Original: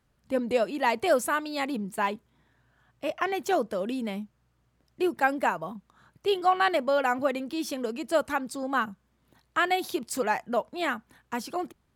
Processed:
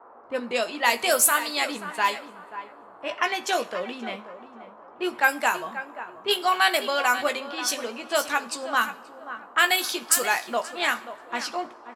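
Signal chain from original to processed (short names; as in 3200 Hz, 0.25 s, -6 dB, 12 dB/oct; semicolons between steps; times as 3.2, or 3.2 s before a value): band noise 250–1200 Hz -49 dBFS; tilt +4.5 dB/oct; doubler 17 ms -8 dB; feedback echo 0.534 s, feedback 30%, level -12.5 dB; low-pass opened by the level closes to 1000 Hz, open at -19.5 dBFS; two-slope reverb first 0.45 s, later 2.1 s, from -18 dB, DRR 13 dB; gain +2 dB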